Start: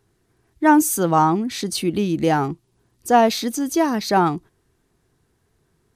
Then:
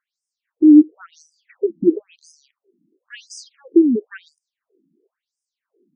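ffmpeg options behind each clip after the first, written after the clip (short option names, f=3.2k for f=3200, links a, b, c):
-af "lowshelf=f=590:t=q:w=3:g=9.5,afftfilt=real='re*between(b*sr/1024,230*pow(7000/230,0.5+0.5*sin(2*PI*0.97*pts/sr))/1.41,230*pow(7000/230,0.5+0.5*sin(2*PI*0.97*pts/sr))*1.41)':imag='im*between(b*sr/1024,230*pow(7000/230,0.5+0.5*sin(2*PI*0.97*pts/sr))/1.41,230*pow(7000/230,0.5+0.5*sin(2*PI*0.97*pts/sr))*1.41)':win_size=1024:overlap=0.75,volume=-4.5dB"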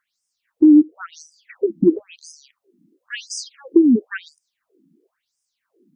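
-af "equalizer=f=420:t=o:w=0.62:g=-8.5,acompressor=threshold=-18dB:ratio=3,volume=8dB"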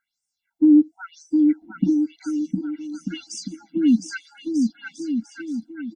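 -filter_complex "[0:a]asplit=2[a][b];[b]aecho=0:1:710|1242|1642|1941|2166:0.631|0.398|0.251|0.158|0.1[c];[a][c]amix=inputs=2:normalize=0,afftfilt=real='re*eq(mod(floor(b*sr/1024/330),2),0)':imag='im*eq(mod(floor(b*sr/1024/330),2),0)':win_size=1024:overlap=0.75,volume=-2dB"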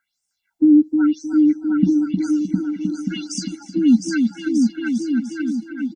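-filter_complex "[0:a]acrossover=split=310|3000[a][b][c];[b]acompressor=threshold=-31dB:ratio=4[d];[a][d][c]amix=inputs=3:normalize=0,asplit=2[e][f];[f]adelay=310,lowpass=f=1.5k:p=1,volume=-5dB,asplit=2[g][h];[h]adelay=310,lowpass=f=1.5k:p=1,volume=0.35,asplit=2[i][j];[j]adelay=310,lowpass=f=1.5k:p=1,volume=0.35,asplit=2[k][l];[l]adelay=310,lowpass=f=1.5k:p=1,volume=0.35[m];[g][i][k][m]amix=inputs=4:normalize=0[n];[e][n]amix=inputs=2:normalize=0,volume=5dB"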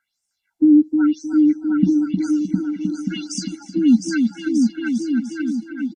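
-af "aresample=32000,aresample=44100"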